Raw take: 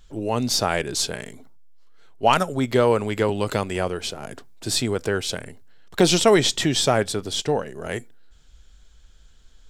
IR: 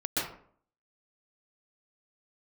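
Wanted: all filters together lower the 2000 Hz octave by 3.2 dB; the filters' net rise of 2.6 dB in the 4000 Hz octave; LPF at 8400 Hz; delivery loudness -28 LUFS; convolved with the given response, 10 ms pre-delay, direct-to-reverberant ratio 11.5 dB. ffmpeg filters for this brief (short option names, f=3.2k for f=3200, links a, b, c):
-filter_complex "[0:a]lowpass=8.4k,equalizer=f=2k:t=o:g=-5.5,equalizer=f=4k:t=o:g=5,asplit=2[a][b];[1:a]atrim=start_sample=2205,adelay=10[c];[b][c]afir=irnorm=-1:irlink=0,volume=-19.5dB[d];[a][d]amix=inputs=2:normalize=0,volume=-6.5dB"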